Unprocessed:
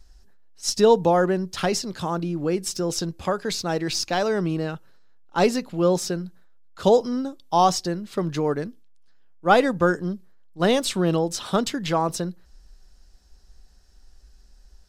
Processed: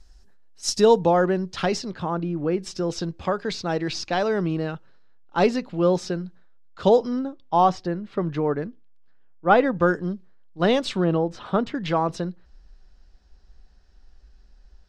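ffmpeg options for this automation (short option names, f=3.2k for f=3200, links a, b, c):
-af "asetnsamples=n=441:p=0,asendcmd='0.99 lowpass f 4900;1.92 lowpass f 2500;2.59 lowpass f 4200;7.19 lowpass f 2400;9.77 lowpass f 4100;11.04 lowpass f 2000;11.75 lowpass f 3700',lowpass=9.8k"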